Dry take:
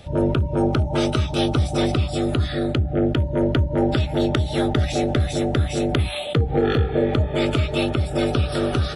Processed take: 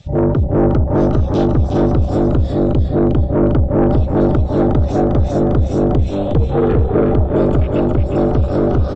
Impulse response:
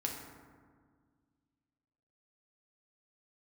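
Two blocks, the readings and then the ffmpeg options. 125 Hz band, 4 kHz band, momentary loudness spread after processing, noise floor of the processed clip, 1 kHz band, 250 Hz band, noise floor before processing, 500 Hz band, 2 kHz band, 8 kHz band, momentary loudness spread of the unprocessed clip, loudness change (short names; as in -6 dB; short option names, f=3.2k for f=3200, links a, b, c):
+6.5 dB, under -10 dB, 2 LU, -22 dBFS, +5.0 dB, +7.5 dB, -30 dBFS, +6.5 dB, -4.5 dB, n/a, 2 LU, +6.5 dB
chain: -filter_complex "[0:a]aemphasis=mode=production:type=cd,afwtdn=0.0447,highshelf=f=5.5k:g=8.5,acrossover=split=1000[a][b];[b]acompressor=threshold=-47dB:ratio=6[c];[a][c]amix=inputs=2:normalize=0,asoftclip=type=tanh:threshold=-16.5dB,asplit=2[d][e];[e]asplit=4[f][g][h][i];[f]adelay=361,afreqshift=-45,volume=-4.5dB[j];[g]adelay=722,afreqshift=-90,volume=-14.7dB[k];[h]adelay=1083,afreqshift=-135,volume=-24.8dB[l];[i]adelay=1444,afreqshift=-180,volume=-35dB[m];[j][k][l][m]amix=inputs=4:normalize=0[n];[d][n]amix=inputs=2:normalize=0,aresample=16000,aresample=44100,volume=8.5dB" -ar 48000 -c:a sbc -b:a 128k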